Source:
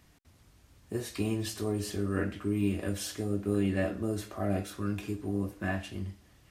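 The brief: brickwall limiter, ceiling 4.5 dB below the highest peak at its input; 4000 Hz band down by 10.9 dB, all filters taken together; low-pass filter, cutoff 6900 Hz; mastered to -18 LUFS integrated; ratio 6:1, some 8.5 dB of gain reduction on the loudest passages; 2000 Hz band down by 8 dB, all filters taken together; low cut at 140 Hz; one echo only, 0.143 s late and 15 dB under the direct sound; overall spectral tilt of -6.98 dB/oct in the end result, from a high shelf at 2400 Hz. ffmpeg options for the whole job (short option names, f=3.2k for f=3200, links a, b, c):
-af "highpass=140,lowpass=6.9k,equalizer=f=2k:t=o:g=-5.5,highshelf=f=2.4k:g=-8.5,equalizer=f=4k:t=o:g=-4,acompressor=threshold=-34dB:ratio=6,alimiter=level_in=6.5dB:limit=-24dB:level=0:latency=1,volume=-6.5dB,aecho=1:1:143:0.178,volume=24dB"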